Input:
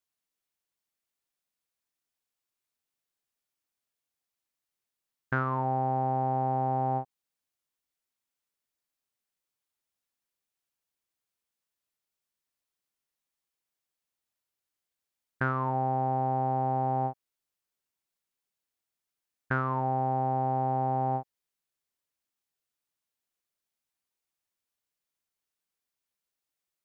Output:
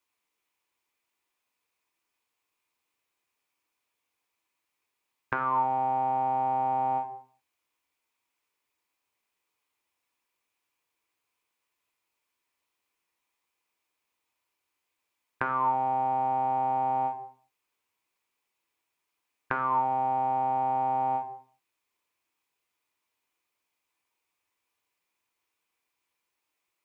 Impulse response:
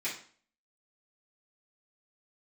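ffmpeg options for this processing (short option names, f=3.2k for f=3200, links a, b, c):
-filter_complex "[0:a]asplit=2[a][b];[1:a]atrim=start_sample=2205,afade=t=out:st=0.43:d=0.01,atrim=end_sample=19404[c];[b][c]afir=irnorm=-1:irlink=0,volume=-6dB[d];[a][d]amix=inputs=2:normalize=0,acrossover=split=310|1600[e][f][g];[e]acompressor=threshold=-47dB:ratio=4[h];[f]acompressor=threshold=-36dB:ratio=4[i];[g]acompressor=threshold=-46dB:ratio=4[j];[h][i][j]amix=inputs=3:normalize=0,equalizer=f=100:t=o:w=0.67:g=6,equalizer=f=400:t=o:w=0.67:g=8,equalizer=f=1k:t=o:w=0.67:g=12,equalizer=f=2.5k:t=o:w=0.67:g=8"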